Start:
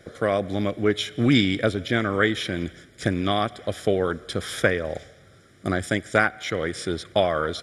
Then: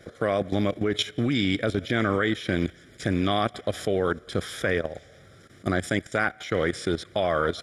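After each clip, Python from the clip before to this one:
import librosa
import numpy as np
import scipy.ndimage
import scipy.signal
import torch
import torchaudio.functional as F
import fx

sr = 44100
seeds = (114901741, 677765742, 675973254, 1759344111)

y = fx.peak_eq(x, sr, hz=8900.0, db=-2.5, octaves=0.21)
y = fx.level_steps(y, sr, step_db=14)
y = y * librosa.db_to_amplitude(4.5)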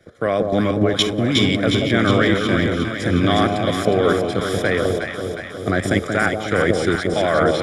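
y = fx.echo_alternate(x, sr, ms=181, hz=880.0, feedback_pct=83, wet_db=-2.5)
y = fx.band_widen(y, sr, depth_pct=40)
y = y * librosa.db_to_amplitude(5.5)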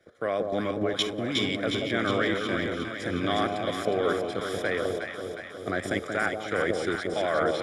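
y = fx.bass_treble(x, sr, bass_db=-8, treble_db=-2)
y = y * librosa.db_to_amplitude(-8.0)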